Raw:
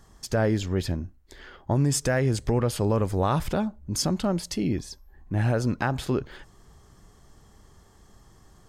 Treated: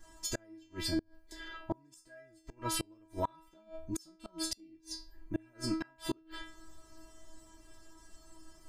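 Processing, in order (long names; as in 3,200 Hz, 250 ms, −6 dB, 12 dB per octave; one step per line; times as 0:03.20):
dynamic equaliser 630 Hz, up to −5 dB, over −40 dBFS, Q 1.8
stiff-string resonator 320 Hz, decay 0.45 s, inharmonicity 0.002
gate with flip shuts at −39 dBFS, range −32 dB
level +17 dB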